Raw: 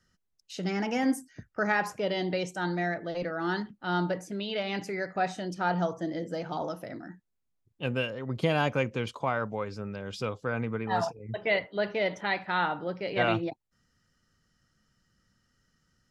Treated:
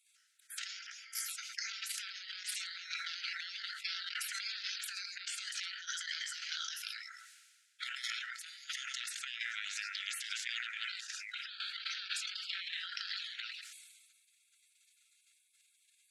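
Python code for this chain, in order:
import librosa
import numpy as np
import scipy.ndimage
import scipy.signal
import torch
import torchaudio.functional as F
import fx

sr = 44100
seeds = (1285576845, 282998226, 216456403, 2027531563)

p1 = scipy.signal.sosfilt(scipy.signal.butter(4, 10000.0, 'lowpass', fs=sr, output='sos'), x)
p2 = p1 + fx.echo_single(p1, sr, ms=111, db=-19.0, dry=0)
p3 = fx.spec_gate(p2, sr, threshold_db=-30, keep='weak')
p4 = fx.over_compress(p3, sr, threshold_db=-59.0, ratio=-0.5)
p5 = fx.brickwall_highpass(p4, sr, low_hz=1300.0)
p6 = fx.transient(p5, sr, attack_db=6, sustain_db=-1)
p7 = fx.sustainer(p6, sr, db_per_s=37.0)
y = p7 * librosa.db_to_amplitude(14.0)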